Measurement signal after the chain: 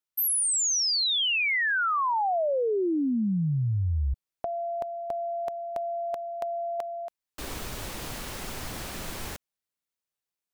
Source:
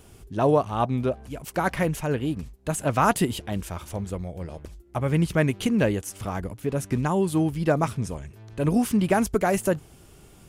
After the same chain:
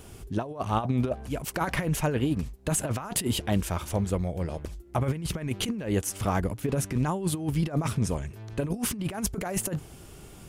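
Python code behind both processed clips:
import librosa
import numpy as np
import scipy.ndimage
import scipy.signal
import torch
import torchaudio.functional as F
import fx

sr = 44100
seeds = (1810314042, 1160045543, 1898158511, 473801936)

y = fx.over_compress(x, sr, threshold_db=-26.0, ratio=-0.5)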